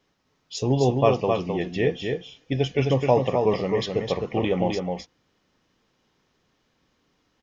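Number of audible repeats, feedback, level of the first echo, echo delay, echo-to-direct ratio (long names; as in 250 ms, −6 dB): 1, repeats not evenly spaced, −4.5 dB, 260 ms, −4.5 dB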